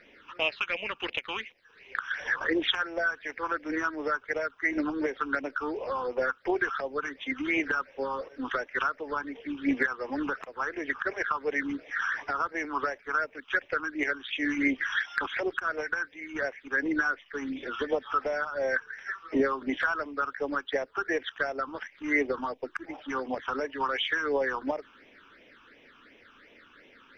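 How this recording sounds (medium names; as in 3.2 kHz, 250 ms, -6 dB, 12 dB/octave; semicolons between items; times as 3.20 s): phasing stages 8, 2.8 Hz, lowest notch 560–1400 Hz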